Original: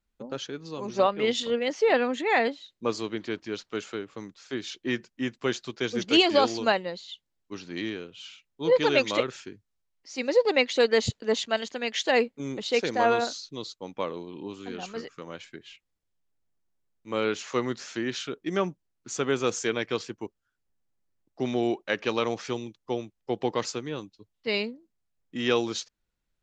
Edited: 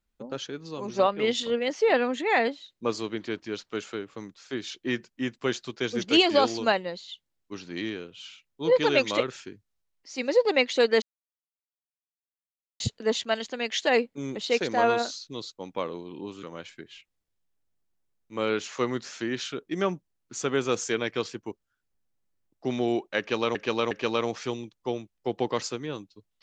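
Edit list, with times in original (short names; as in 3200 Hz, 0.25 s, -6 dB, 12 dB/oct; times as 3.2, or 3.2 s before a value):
11.02 insert silence 1.78 s
14.65–15.18 cut
21.94–22.3 loop, 3 plays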